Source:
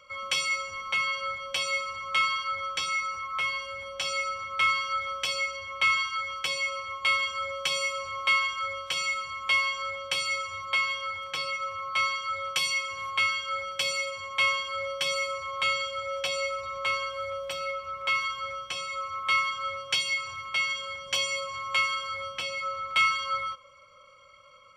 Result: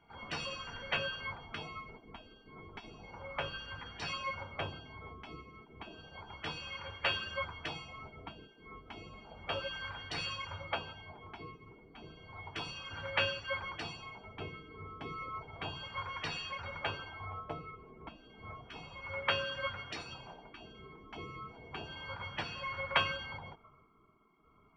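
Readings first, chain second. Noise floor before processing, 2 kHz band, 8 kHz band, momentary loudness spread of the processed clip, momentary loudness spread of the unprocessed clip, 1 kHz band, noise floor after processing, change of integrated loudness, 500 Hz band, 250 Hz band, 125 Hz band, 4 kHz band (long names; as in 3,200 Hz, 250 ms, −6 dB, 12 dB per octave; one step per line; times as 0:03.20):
−53 dBFS, −13.0 dB, −21.5 dB, 18 LU, 8 LU, −12.0 dB, −64 dBFS, −12.0 dB, −7.5 dB, can't be measured, +6.5 dB, −11.0 dB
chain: auto-filter low-pass sine 0.32 Hz 410–1,600 Hz
mains-hum notches 60/120/180/240/300/360/420/480/540 Hz
gate on every frequency bin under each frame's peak −20 dB weak
level +9 dB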